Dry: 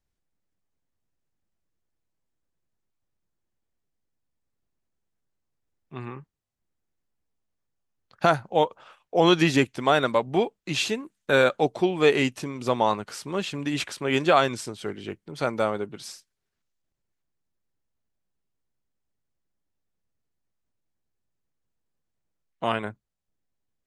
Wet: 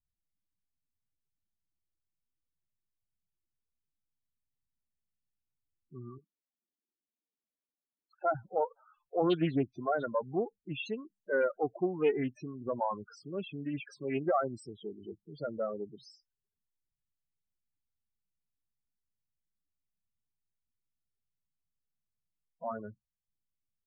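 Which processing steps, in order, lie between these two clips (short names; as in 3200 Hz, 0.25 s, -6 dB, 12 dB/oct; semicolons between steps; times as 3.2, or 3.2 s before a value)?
6.18–8.35 steep high-pass 200 Hz; loudest bins only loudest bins 8; Doppler distortion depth 0.17 ms; gain -8 dB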